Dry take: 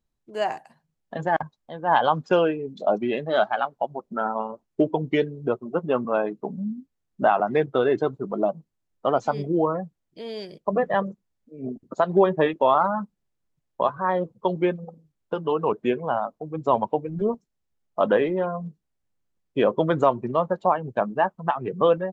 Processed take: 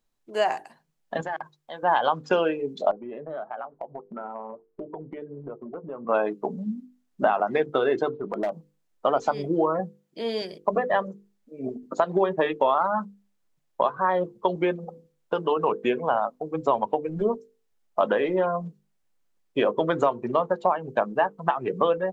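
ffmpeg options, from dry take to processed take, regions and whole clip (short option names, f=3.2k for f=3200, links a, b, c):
-filter_complex "[0:a]asettb=1/sr,asplit=3[a][b][c];[a]atrim=end=1.214[d];[b]atrim=start=1.21:end=1.83,asetpts=PTS-STARTPTS,afade=t=in:d=0.004:c=qsin,afade=t=out:st=0.616:d=0.004:c=qsin,lowshelf=f=470:g=-11,acompressor=threshold=-32dB:ratio=5:attack=3.2:release=140:knee=1:detection=peak[e];[c]atrim=start=1.826[f];[d][e]acrossfade=d=0.004:c1=hsin:c2=qsin[g];[g][f]acrossfade=d=0.004:c1=qsin:c2=hsin,asettb=1/sr,asplit=3[h][i][j];[h]atrim=end=2.914[k];[i]atrim=start=2.91:end=6.09,asetpts=PTS-STARTPTS,afade=t=in:d=0.004:c=qsin,afade=t=out:st=3.176:d=0.004:c=qsin,lowpass=1.1k,bandreject=f=840:w=17,acompressor=threshold=-35dB:ratio=8:attack=3.2:release=140:knee=1:detection=peak[l];[j]atrim=start=6.086[m];[k][l]acrossfade=d=0.004:c1=hsin:c2=qsin[n];[n][m]acrossfade=d=0.004:c1=qsin:c2=hsin,asettb=1/sr,asplit=3[o][p][q];[o]atrim=end=8.094[r];[p]atrim=start=8.09:end=8.52,asetpts=PTS-STARTPTS,afade=t=in:d=0.004:c=qsin,afade=t=out:st=0.426:d=0.004:c=qsin,lowpass=f=3.9k:w=0.5412,lowpass=f=3.9k:w=1.3066,asoftclip=type=hard:threshold=-18dB,acompressor=threshold=-28dB:ratio=5:attack=3.2:release=140:knee=1:detection=peak[s];[q]atrim=start=8.516[t];[r][s]acrossfade=d=0.004:c1=hsin:c2=qsin[u];[u][t]acrossfade=d=0.004:c1=qsin:c2=hsin,asettb=1/sr,asplit=3[v][w][x];[v]atrim=end=9.794[y];[w]atrim=start=9.79:end=10.42,asetpts=PTS-STARTPTS,afade=t=in:d=0.004:c=qsin,afade=t=out:st=0.626:d=0.004:c=qsin,highpass=180,lowshelf=f=270:g=9.5,asplit=2[z][aa];[aa]adelay=13,volume=-13dB[ab];[z][ab]amix=inputs=2:normalize=0,atrim=end_sample=27783[ac];[x]atrim=start=10.416[ad];[y][ac]acrossfade=d=0.004:c1=hsin:c2=qsin[ae];[ae][ad]acrossfade=d=0.004:c1=qsin:c2=hsin,equalizer=f=64:w=0.39:g=-12.5,acompressor=threshold=-24dB:ratio=4,bandreject=f=50:t=h:w=6,bandreject=f=100:t=h:w=6,bandreject=f=150:t=h:w=6,bandreject=f=200:t=h:w=6,bandreject=f=250:t=h:w=6,bandreject=f=300:t=h:w=6,bandreject=f=350:t=h:w=6,bandreject=f=400:t=h:w=6,bandreject=f=450:t=h:w=6,bandreject=f=500:t=h:w=6,volume=5.5dB"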